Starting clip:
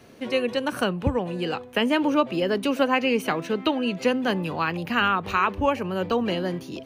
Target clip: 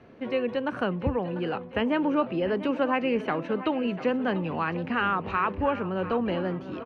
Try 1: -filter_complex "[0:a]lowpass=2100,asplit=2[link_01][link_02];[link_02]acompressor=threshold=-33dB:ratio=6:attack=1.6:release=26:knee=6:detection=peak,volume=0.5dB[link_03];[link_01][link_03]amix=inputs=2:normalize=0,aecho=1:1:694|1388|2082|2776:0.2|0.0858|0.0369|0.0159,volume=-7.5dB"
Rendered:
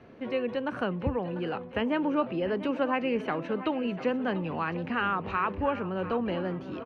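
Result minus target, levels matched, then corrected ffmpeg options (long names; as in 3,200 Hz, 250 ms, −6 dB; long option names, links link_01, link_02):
downward compressor: peak gain reduction +9 dB
-filter_complex "[0:a]lowpass=2100,asplit=2[link_01][link_02];[link_02]acompressor=threshold=-22dB:ratio=6:attack=1.6:release=26:knee=6:detection=peak,volume=0.5dB[link_03];[link_01][link_03]amix=inputs=2:normalize=0,aecho=1:1:694|1388|2082|2776:0.2|0.0858|0.0369|0.0159,volume=-7.5dB"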